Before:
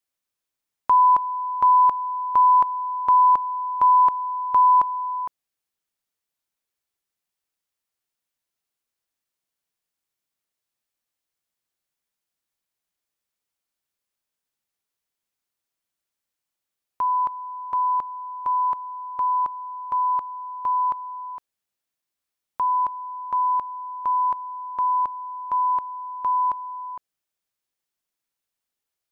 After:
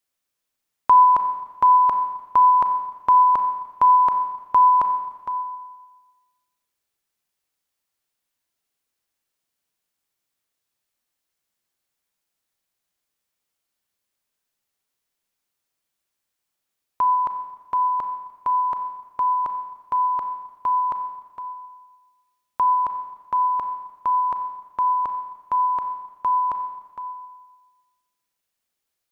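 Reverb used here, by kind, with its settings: Schroeder reverb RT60 1.3 s, combs from 29 ms, DRR 7 dB; trim +3.5 dB

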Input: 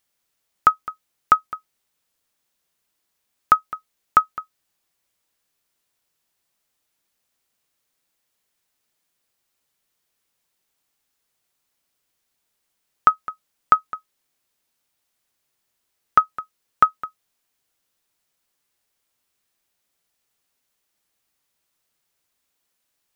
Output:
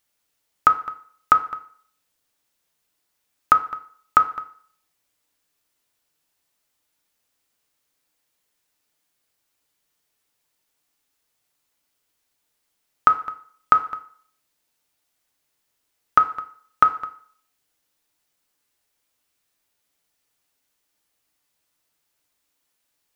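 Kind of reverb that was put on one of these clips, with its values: FDN reverb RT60 0.55 s, low-frequency decay 0.75×, high-frequency decay 0.85×, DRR 6.5 dB

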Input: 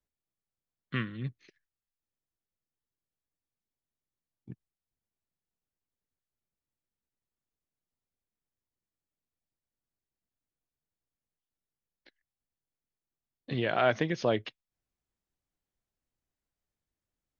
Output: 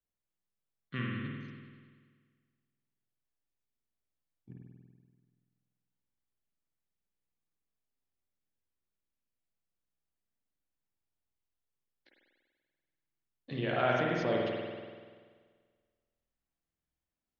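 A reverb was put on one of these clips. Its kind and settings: spring tank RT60 1.7 s, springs 48 ms, chirp 55 ms, DRR -3 dB; trim -6.5 dB

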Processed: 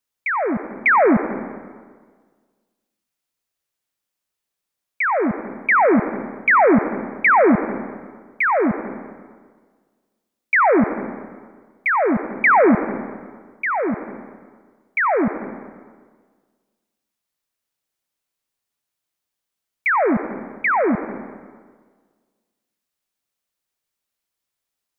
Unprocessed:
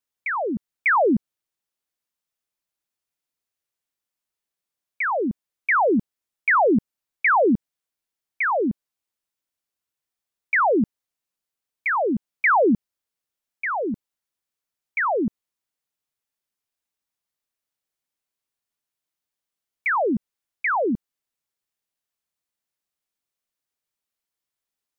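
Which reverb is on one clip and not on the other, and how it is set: algorithmic reverb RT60 1.6 s, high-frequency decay 0.7×, pre-delay 50 ms, DRR 9.5 dB; trim +4 dB

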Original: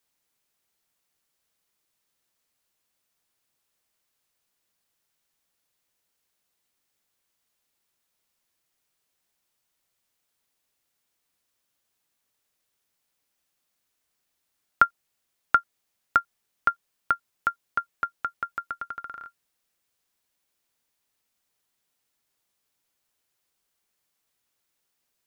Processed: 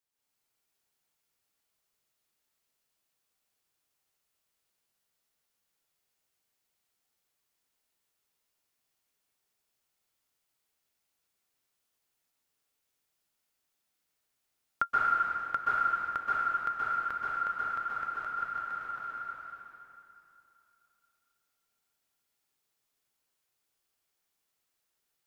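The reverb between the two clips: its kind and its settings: plate-style reverb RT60 2.9 s, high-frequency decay 0.9×, pre-delay 115 ms, DRR -8.5 dB; trim -12 dB

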